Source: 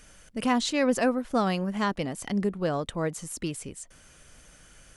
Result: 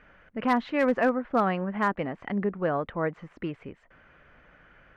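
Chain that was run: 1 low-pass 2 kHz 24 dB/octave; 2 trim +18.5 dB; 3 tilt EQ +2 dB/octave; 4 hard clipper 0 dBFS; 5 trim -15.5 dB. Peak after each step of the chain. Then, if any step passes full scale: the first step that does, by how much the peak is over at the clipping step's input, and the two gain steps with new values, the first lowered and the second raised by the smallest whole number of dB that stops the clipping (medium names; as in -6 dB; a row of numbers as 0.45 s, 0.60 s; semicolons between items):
-13.0 dBFS, +5.5 dBFS, +4.5 dBFS, 0.0 dBFS, -15.5 dBFS; step 2, 4.5 dB; step 2 +13.5 dB, step 5 -10.5 dB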